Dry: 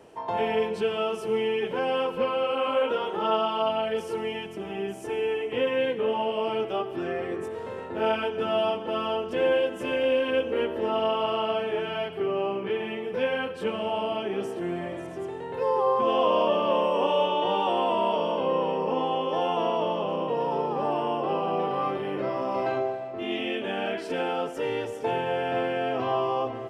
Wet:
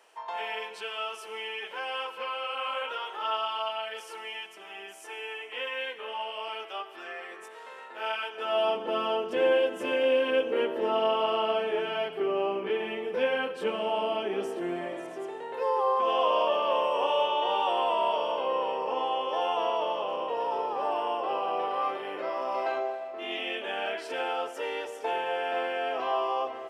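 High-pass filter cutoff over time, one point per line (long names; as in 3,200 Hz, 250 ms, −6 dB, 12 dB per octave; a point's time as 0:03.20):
0:08.27 1,100 Hz
0:08.80 280 Hz
0:14.70 280 Hz
0:15.83 580 Hz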